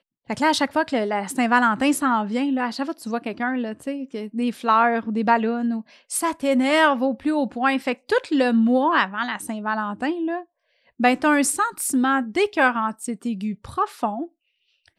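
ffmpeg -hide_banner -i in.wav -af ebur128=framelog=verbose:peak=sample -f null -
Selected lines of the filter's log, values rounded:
Integrated loudness:
  I:         -22.0 LUFS
  Threshold: -32.3 LUFS
Loudness range:
  LRA:         2.6 LU
  Threshold: -42.1 LUFS
  LRA low:   -23.4 LUFS
  LRA high:  -20.7 LUFS
Sample peak:
  Peak:       -4.4 dBFS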